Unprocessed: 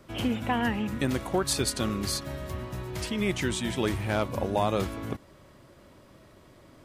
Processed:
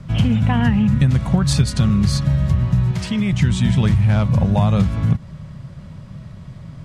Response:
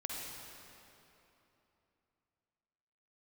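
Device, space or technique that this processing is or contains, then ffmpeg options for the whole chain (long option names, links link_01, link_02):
jukebox: -filter_complex "[0:a]lowpass=7600,lowshelf=frequency=230:width_type=q:width=3:gain=12,acompressor=threshold=-19dB:ratio=6,asettb=1/sr,asplit=3[link_01][link_02][link_03];[link_01]atrim=end=2.914[link_04];[link_02]atrim=start=2.91:end=3.33,asetpts=PTS-STARTPTS,afade=type=in:duration=0.004:curve=qsin,afade=type=out:start_time=0.416:duration=0.004:curve=qsin,highpass=frequency=250:poles=1[link_05];[link_03]atrim=start=3.326[link_06];[link_04][link_05]acrossfade=duration=0.004:curve1=hsin:curve2=qsin[link_07];[link_07][link_06]acrossfade=duration=0.004:curve1=qsin:curve2=hsin,volume=7.5dB"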